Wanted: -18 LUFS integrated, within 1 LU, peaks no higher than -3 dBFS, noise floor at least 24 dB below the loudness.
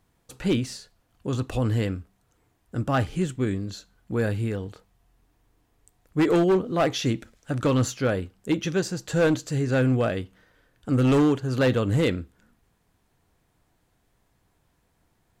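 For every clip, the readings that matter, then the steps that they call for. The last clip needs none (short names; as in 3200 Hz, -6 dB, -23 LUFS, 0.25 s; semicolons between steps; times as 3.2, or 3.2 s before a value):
clipped 1.4%; flat tops at -16.0 dBFS; loudness -25.0 LUFS; peak -16.0 dBFS; loudness target -18.0 LUFS
-> clip repair -16 dBFS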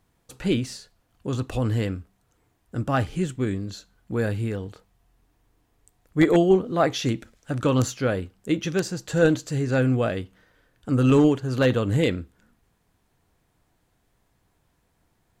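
clipped 0.0%; loudness -24.0 LUFS; peak -7.0 dBFS; loudness target -18.0 LUFS
-> gain +6 dB; limiter -3 dBFS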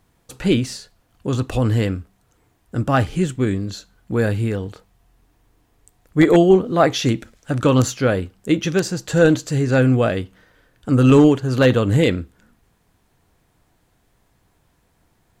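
loudness -18.5 LUFS; peak -3.0 dBFS; noise floor -63 dBFS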